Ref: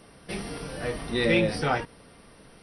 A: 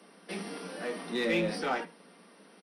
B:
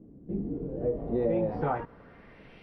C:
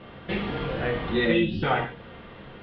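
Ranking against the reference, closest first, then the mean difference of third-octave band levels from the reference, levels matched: A, C, B; 4.0, 8.0, 10.5 decibels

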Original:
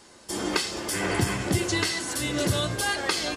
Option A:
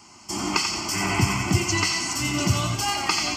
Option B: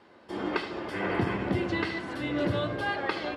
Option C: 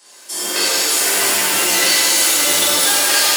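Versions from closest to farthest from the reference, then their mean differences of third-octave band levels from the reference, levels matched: A, B, C; 4.0, 7.5, 10.0 decibels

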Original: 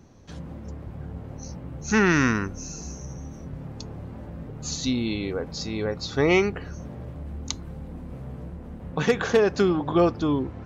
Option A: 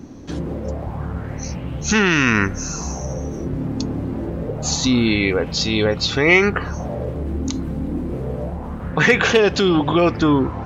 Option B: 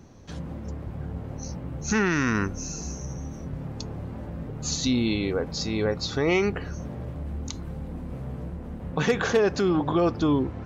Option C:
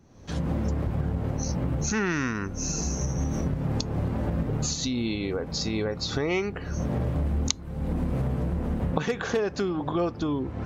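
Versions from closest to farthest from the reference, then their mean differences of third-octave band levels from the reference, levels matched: B, A, C; 2.5, 3.5, 7.0 decibels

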